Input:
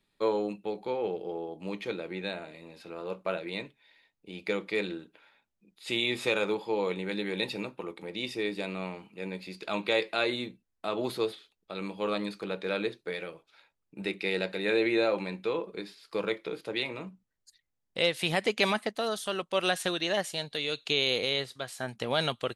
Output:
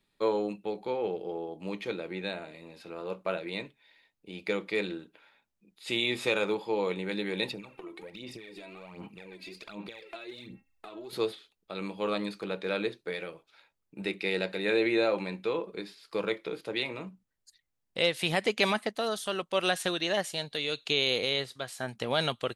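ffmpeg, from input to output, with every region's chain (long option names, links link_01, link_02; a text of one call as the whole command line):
ffmpeg -i in.wav -filter_complex "[0:a]asettb=1/sr,asplit=3[link_01][link_02][link_03];[link_01]atrim=end=7.514[link_04];[link_02]atrim=start=7.51:end=11.13,asetpts=PTS-STARTPTS,afade=type=in:duration=0.004:curve=qsin,afade=type=out:start_time=3.616:duration=0.004:curve=qsin,bandreject=frequency=269.6:width_type=h:width=4,bandreject=frequency=539.2:width_type=h:width=4,bandreject=frequency=808.8:width_type=h:width=4,bandreject=frequency=1078.4:width_type=h:width=4,bandreject=frequency=1348:width_type=h:width=4,bandreject=frequency=1617.6:width_type=h:width=4,bandreject=frequency=1887.2:width_type=h:width=4,bandreject=frequency=2156.8:width_type=h:width=4,bandreject=frequency=2426.4:width_type=h:width=4,bandreject=frequency=2696:width_type=h:width=4,acompressor=threshold=-42dB:ratio=12:attack=3.2:release=140:knee=1:detection=peak,aphaser=in_gain=1:out_gain=1:delay=3.1:decay=0.66:speed=1.3:type=sinusoidal[link_05];[link_03]atrim=start=11.126[link_06];[link_04][link_05]acrossfade=duration=0.004:curve1=hsin:curve2=qsin[link_07];[link_07][link_06]acrossfade=duration=0.004:curve1=qsin:curve2=hsin" out.wav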